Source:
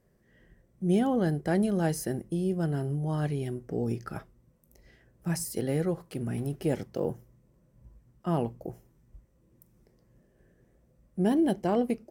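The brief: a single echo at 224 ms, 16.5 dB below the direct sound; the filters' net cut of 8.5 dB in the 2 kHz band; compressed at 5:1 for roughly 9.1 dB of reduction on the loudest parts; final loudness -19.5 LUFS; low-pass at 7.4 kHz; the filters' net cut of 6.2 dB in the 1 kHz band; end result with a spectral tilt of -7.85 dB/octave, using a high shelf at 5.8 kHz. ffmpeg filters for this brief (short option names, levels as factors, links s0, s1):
-af "lowpass=7400,equalizer=f=1000:t=o:g=-8,equalizer=f=2000:t=o:g=-8.5,highshelf=f=5800:g=5,acompressor=threshold=0.0251:ratio=5,aecho=1:1:224:0.15,volume=7.5"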